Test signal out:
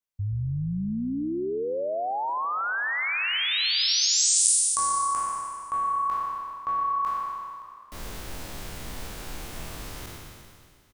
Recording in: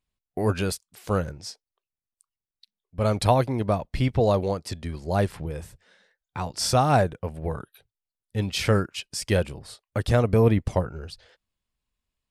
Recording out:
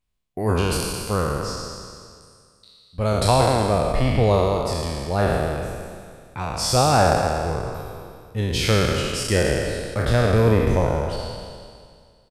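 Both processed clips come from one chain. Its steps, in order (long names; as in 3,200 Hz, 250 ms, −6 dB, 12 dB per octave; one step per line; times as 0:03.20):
peak hold with a decay on every bin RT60 2.08 s
low-shelf EQ 64 Hz +6.5 dB
echo with shifted repeats 119 ms, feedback 50%, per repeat −33 Hz, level −11.5 dB
level −1 dB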